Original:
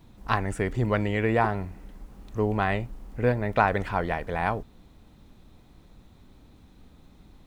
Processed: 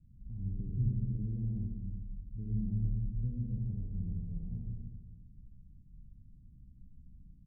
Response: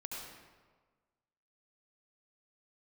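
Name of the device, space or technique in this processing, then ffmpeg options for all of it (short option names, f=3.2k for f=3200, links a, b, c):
club heard from the street: -filter_complex "[0:a]alimiter=limit=-16dB:level=0:latency=1:release=66,lowpass=f=180:w=0.5412,lowpass=f=180:w=1.3066[a];[1:a]atrim=start_sample=2205[b];[a][b]afir=irnorm=-1:irlink=0,bandreject=f=103.6:t=h:w=4,bandreject=f=207.2:t=h:w=4,bandreject=f=310.8:t=h:w=4,bandreject=f=414.4:t=h:w=4,bandreject=f=518:t=h:w=4,bandreject=f=621.6:t=h:w=4,asplit=3[c][d][e];[c]afade=t=out:st=2.51:d=0.02[f];[d]asplit=2[g][h];[h]adelay=27,volume=-3dB[i];[g][i]amix=inputs=2:normalize=0,afade=t=in:st=2.51:d=0.02,afade=t=out:st=3.21:d=0.02[j];[e]afade=t=in:st=3.21:d=0.02[k];[f][j][k]amix=inputs=3:normalize=0"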